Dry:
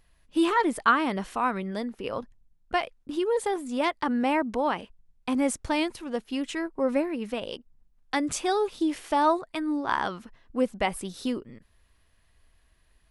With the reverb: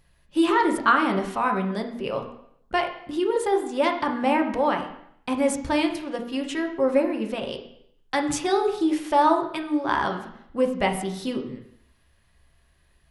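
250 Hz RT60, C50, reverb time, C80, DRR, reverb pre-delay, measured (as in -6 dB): 0.70 s, 8.5 dB, 0.70 s, 12.0 dB, 3.0 dB, 3 ms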